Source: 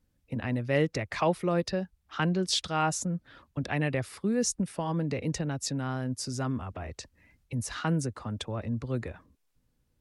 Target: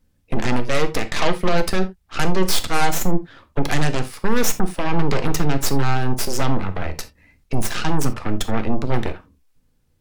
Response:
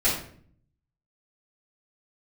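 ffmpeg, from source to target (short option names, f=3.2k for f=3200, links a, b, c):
-filter_complex "[0:a]alimiter=limit=-20.5dB:level=0:latency=1:release=210,aeval=exprs='0.0944*(cos(1*acos(clip(val(0)/0.0944,-1,1)))-cos(1*PI/2))+0.0376*(cos(6*acos(clip(val(0)/0.0944,-1,1)))-cos(6*PI/2))':c=same,asplit=2[a][b];[1:a]atrim=start_sample=2205,atrim=end_sample=3969[c];[b][c]afir=irnorm=-1:irlink=0,volume=-19.5dB[d];[a][d]amix=inputs=2:normalize=0,volume=6dB"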